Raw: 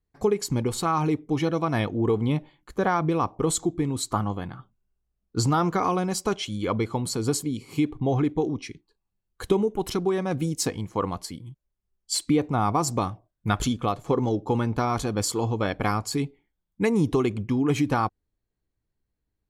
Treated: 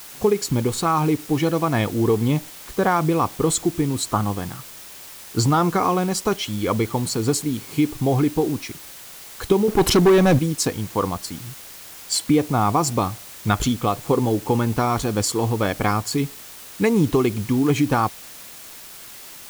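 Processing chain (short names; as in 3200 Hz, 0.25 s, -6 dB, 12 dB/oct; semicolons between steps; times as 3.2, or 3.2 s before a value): 9.68–10.39 sample leveller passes 3; in parallel at -4 dB: requantised 6-bit, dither triangular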